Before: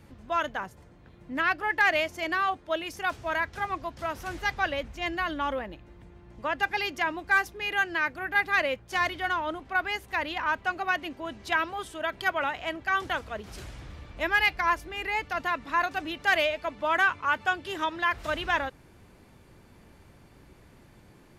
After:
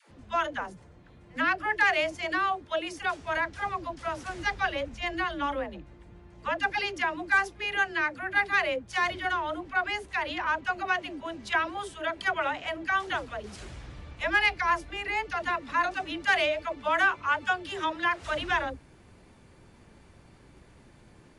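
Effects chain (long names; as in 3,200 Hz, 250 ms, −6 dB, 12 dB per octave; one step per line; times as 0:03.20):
all-pass dispersion lows, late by 102 ms, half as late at 410 Hz
MP3 56 kbit/s 24,000 Hz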